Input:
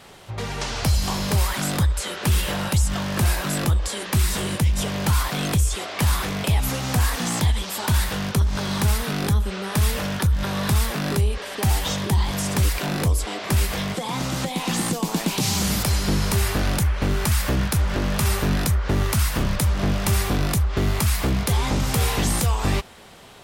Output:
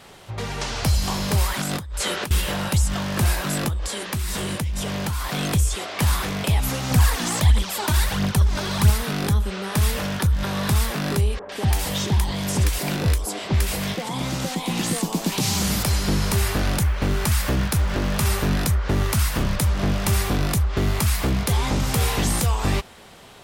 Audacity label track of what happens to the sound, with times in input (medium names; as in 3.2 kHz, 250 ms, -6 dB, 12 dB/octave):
1.600000	2.310000	compressor with a negative ratio -28 dBFS
3.680000	5.330000	compression, threshold -22 dBFS
6.910000	8.900000	phaser 1.5 Hz, delay 3.4 ms, feedback 51%
11.390000	15.320000	bands offset in time lows, highs 100 ms, split 1.2 kHz
16.870000	18.330000	companded quantiser 8-bit